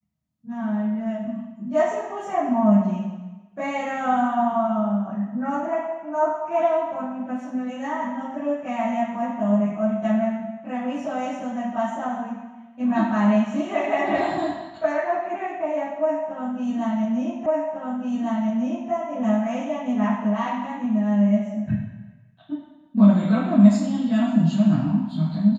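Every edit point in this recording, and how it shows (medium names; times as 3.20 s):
17.46 s: repeat of the last 1.45 s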